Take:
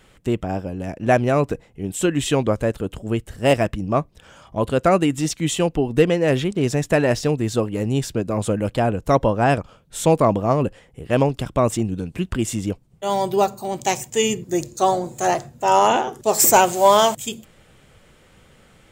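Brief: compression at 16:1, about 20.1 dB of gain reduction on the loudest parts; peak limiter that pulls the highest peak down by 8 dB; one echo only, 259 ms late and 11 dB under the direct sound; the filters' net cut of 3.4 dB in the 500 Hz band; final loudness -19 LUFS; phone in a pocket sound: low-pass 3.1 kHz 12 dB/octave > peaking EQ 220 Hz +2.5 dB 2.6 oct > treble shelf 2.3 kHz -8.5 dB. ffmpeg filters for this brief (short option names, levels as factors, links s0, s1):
-af "equalizer=f=500:t=o:g=-5.5,acompressor=threshold=0.0251:ratio=16,alimiter=level_in=1.5:limit=0.0631:level=0:latency=1,volume=0.668,lowpass=3100,equalizer=f=220:t=o:w=2.6:g=2.5,highshelf=f=2300:g=-8.5,aecho=1:1:259:0.282,volume=9.44"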